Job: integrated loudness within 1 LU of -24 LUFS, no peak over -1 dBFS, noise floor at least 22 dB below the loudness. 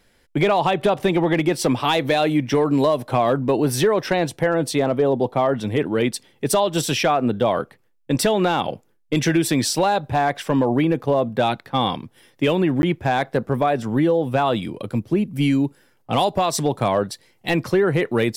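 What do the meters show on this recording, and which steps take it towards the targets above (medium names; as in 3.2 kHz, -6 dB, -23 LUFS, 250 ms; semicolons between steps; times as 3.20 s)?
clipped samples 0.6%; clipping level -10.0 dBFS; dropouts 1; longest dropout 11 ms; loudness -20.5 LUFS; peak level -10.0 dBFS; loudness target -24.0 LUFS
-> clip repair -10 dBFS; interpolate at 12.82 s, 11 ms; trim -3.5 dB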